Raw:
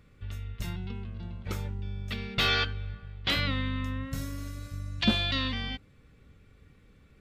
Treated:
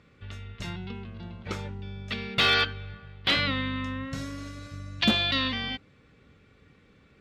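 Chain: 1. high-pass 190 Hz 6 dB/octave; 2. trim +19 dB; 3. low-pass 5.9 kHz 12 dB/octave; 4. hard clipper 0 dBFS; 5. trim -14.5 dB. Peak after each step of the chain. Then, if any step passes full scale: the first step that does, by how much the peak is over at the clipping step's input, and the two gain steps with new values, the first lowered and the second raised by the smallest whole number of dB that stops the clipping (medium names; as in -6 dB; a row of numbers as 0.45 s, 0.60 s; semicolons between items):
-11.0 dBFS, +8.0 dBFS, +8.0 dBFS, 0.0 dBFS, -14.5 dBFS; step 2, 8.0 dB; step 2 +11 dB, step 5 -6.5 dB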